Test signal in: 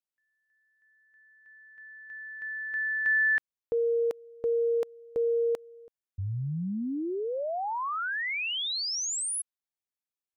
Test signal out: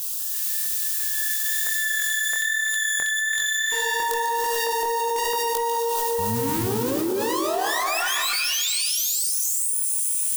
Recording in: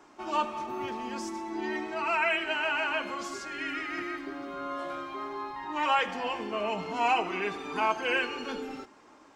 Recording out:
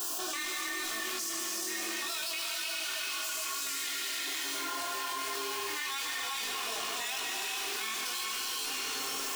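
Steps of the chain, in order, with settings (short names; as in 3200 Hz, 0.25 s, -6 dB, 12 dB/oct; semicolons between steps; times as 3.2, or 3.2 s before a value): minimum comb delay 2.8 ms; RIAA curve recording; added noise blue -61 dBFS; high shelf 3100 Hz +10.5 dB; notches 50/100/150/200/250/300/350 Hz; LFO notch square 1.5 Hz 630–2100 Hz; chorus 1.1 Hz, delay 17.5 ms, depth 7.3 ms; split-band echo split 2600 Hz, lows 0.279 s, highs 0.146 s, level -11 dB; non-linear reverb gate 0.46 s rising, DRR 0 dB; fast leveller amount 100%; gain -14 dB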